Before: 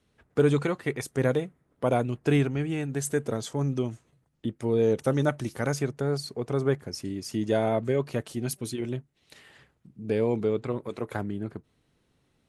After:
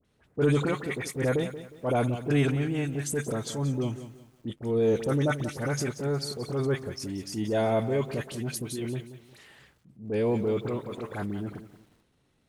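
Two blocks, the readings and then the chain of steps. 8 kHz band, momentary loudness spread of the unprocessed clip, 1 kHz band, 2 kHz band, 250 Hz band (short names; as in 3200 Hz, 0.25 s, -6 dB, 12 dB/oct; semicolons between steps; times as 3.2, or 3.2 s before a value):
+0.5 dB, 10 LU, -0.5 dB, +0.5 dB, -1.0 dB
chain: dispersion highs, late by 49 ms, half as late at 1600 Hz; transient shaper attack -7 dB, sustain +4 dB; lo-fi delay 0.18 s, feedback 35%, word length 9-bit, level -12.5 dB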